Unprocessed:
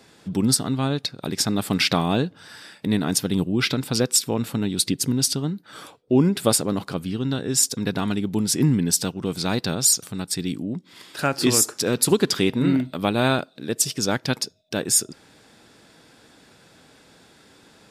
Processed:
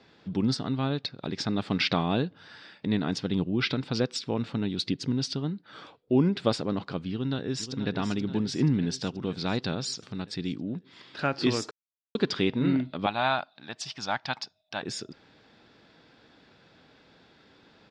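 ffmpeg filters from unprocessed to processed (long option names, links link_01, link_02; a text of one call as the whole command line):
ffmpeg -i in.wav -filter_complex "[0:a]asplit=2[link_01][link_02];[link_02]afade=type=in:start_time=7.11:duration=0.01,afade=type=out:start_time=7.93:duration=0.01,aecho=0:1:480|960|1440|1920|2400|2880|3360|3840:0.298538|0.19405|0.126132|0.0819861|0.0532909|0.0346391|0.0225154|0.014635[link_03];[link_01][link_03]amix=inputs=2:normalize=0,asettb=1/sr,asplit=3[link_04][link_05][link_06];[link_04]atrim=end=13.064[link_07];[link_05]atrim=start=13.06:end=14.83,asetpts=PTS-STARTPTS,afade=type=in:duration=0.004:curve=qsin,afade=type=out:start_time=1.766:duration=0.004:curve=qsin,lowshelf=frequency=590:width_type=q:width=3:gain=-9[link_08];[link_06]atrim=start=14.826[link_09];[link_07][link_08]acrossfade=duration=0.004:curve1=hsin:curve2=qsin[link_10];[link_10][link_09]acrossfade=duration=0.004:curve1=qsin:curve2=hsin,asplit=3[link_11][link_12][link_13];[link_11]atrim=end=11.71,asetpts=PTS-STARTPTS,afade=type=out:start_time=11.706:duration=0.004:curve=hsin[link_14];[link_12]atrim=start=11.71:end=12.15,asetpts=PTS-STARTPTS,volume=0[link_15];[link_13]atrim=start=12.15,asetpts=PTS-STARTPTS,afade=type=in:duration=0.004:curve=hsin[link_16];[link_14][link_15][link_16]concat=n=3:v=0:a=1,lowpass=frequency=4700:width=0.5412,lowpass=frequency=4700:width=1.3066,volume=-5dB" out.wav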